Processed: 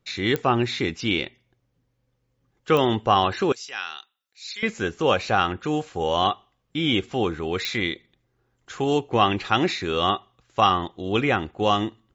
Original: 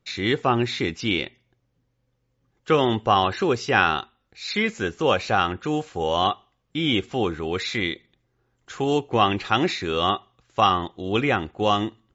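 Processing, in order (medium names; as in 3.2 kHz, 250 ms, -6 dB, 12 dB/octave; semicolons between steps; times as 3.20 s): 3.52–4.63 s: differentiator; clicks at 0.36/2.77/7.65 s, -12 dBFS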